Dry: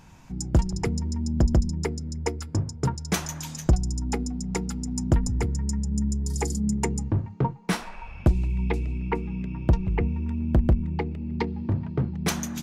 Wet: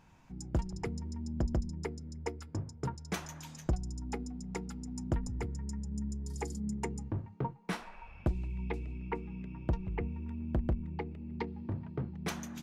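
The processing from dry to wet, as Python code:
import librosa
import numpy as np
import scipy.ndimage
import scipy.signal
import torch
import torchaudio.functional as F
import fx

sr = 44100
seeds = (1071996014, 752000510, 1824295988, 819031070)

y = fx.bass_treble(x, sr, bass_db=-3, treble_db=-6)
y = F.gain(torch.from_numpy(y), -9.0).numpy()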